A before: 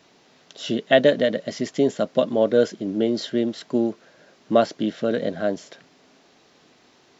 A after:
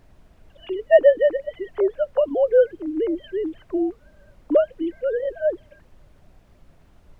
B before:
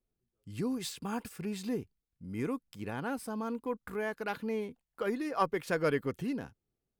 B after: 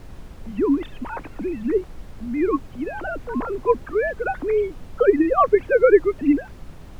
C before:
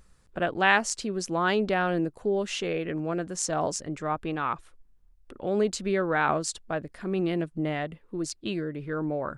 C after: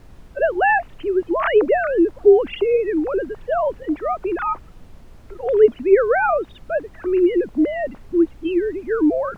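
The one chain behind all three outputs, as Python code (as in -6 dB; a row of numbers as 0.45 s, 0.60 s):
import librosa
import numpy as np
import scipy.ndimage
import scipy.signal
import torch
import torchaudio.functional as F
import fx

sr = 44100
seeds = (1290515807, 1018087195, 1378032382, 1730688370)

y = fx.sine_speech(x, sr)
y = fx.lowpass(y, sr, hz=1600.0, slope=6)
y = fx.dmg_noise_colour(y, sr, seeds[0], colour='brown', level_db=-51.0)
y = librosa.util.normalize(y) * 10.0 ** (-3 / 20.0)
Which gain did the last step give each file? +1.5 dB, +15.0 dB, +10.0 dB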